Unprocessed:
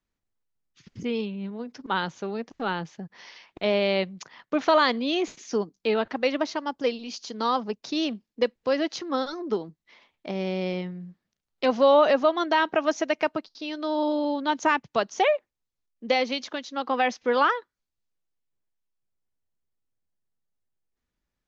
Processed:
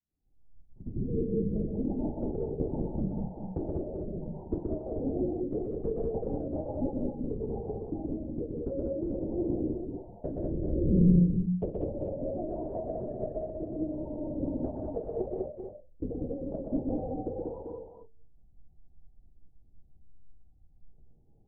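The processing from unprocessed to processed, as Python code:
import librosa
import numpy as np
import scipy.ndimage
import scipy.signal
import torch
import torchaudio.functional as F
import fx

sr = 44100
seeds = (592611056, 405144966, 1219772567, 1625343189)

y = fx.envelope_sharpen(x, sr, power=1.5)
y = fx.recorder_agc(y, sr, target_db=-13.0, rise_db_per_s=77.0, max_gain_db=30)
y = scipy.signal.sosfilt(scipy.signal.butter(16, 850.0, 'lowpass', fs=sr, output='sos'), y)
y = fx.env_lowpass_down(y, sr, base_hz=390.0, full_db=-18.0)
y = fx.dynamic_eq(y, sr, hz=330.0, q=0.79, threshold_db=-34.0, ratio=4.0, max_db=3)
y = fx.comb_fb(y, sr, f0_hz=90.0, decay_s=0.3, harmonics='all', damping=0.0, mix_pct=90)
y = fx.lpc_vocoder(y, sr, seeds[0], excitation='whisper', order=8)
y = fx.echo_multitap(y, sr, ms=(124, 186, 199, 390, 434, 444), db=(-3.5, -5.5, -4.5, -8.5, -11.0, -12.0))
y = y * 10.0 ** (-5.5 / 20.0)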